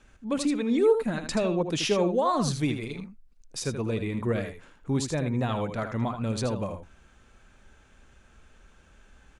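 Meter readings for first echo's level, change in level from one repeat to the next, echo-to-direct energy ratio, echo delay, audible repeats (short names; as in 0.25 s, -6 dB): -8.5 dB, no steady repeat, -8.5 dB, 79 ms, 1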